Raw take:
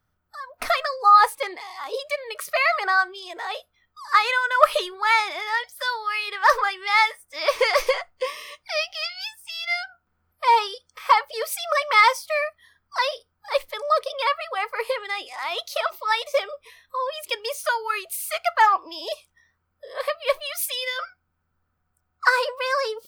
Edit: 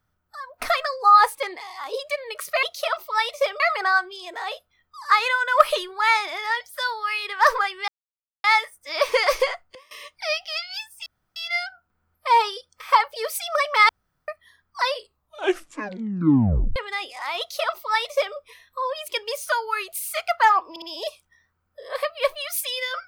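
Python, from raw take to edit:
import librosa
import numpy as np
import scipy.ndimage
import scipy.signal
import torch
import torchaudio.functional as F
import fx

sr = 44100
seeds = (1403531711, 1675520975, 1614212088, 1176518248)

y = fx.edit(x, sr, fx.insert_silence(at_s=6.91, length_s=0.56),
    fx.fade_down_up(start_s=7.98, length_s=0.64, db=-21.0, fade_s=0.24, curve='log'),
    fx.insert_room_tone(at_s=9.53, length_s=0.3),
    fx.room_tone_fill(start_s=12.06, length_s=0.39),
    fx.tape_stop(start_s=13.03, length_s=1.9),
    fx.duplicate(start_s=15.56, length_s=0.97, to_s=2.63),
    fx.stutter(start_s=18.87, slice_s=0.06, count=3), tone=tone)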